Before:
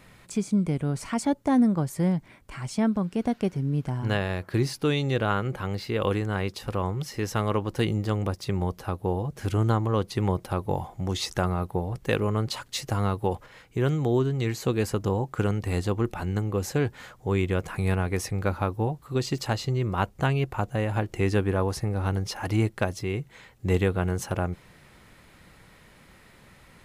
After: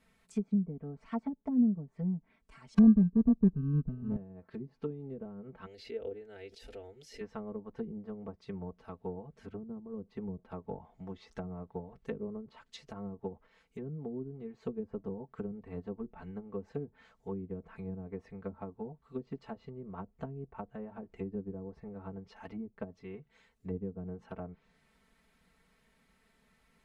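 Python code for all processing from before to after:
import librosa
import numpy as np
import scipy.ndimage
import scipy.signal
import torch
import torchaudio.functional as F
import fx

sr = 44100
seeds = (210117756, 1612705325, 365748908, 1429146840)

y = fx.chain(x, sr, fx.tilt_eq(slope=-3.5),
    fx.sample_hold(seeds[0], rate_hz=1400.0, jitter_pct=0), at=(2.74, 4.16))
y = fx.chain(y, sr, fx.high_shelf(hz=8600.0, db=12.0),
    fx.fixed_phaser(hz=440.0, stages=4),
    fx.pre_swell(db_per_s=50.0), at=(5.66, 7.21))
y = fx.env_lowpass_down(y, sr, base_hz=320.0, full_db=-20.0)
y = y + 0.99 * np.pad(y, (int(4.5 * sr / 1000.0), 0))[:len(y)]
y = fx.upward_expand(y, sr, threshold_db=-32.0, expansion=1.5)
y = y * 10.0 ** (-7.5 / 20.0)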